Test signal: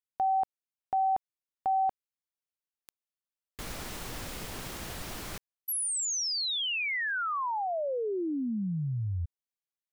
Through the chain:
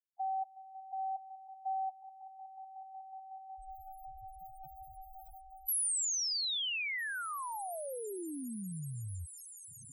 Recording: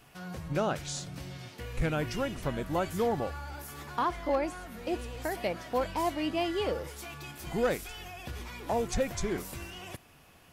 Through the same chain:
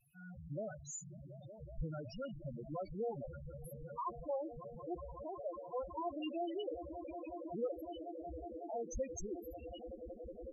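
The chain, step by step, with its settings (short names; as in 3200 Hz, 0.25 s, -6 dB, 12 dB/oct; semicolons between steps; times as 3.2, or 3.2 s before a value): pre-emphasis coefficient 0.8; swelling echo 0.184 s, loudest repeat 8, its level -12.5 dB; loudest bins only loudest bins 4; gain +4.5 dB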